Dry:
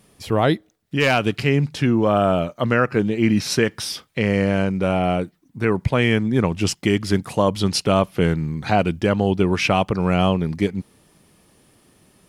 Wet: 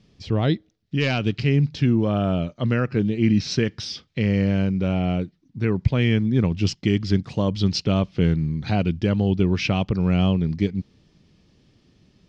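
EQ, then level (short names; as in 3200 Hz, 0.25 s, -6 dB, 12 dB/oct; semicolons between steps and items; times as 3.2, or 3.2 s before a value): synth low-pass 5500 Hz, resonance Q 1.5; air absorption 160 m; bell 990 Hz -14 dB 3 oct; +3.5 dB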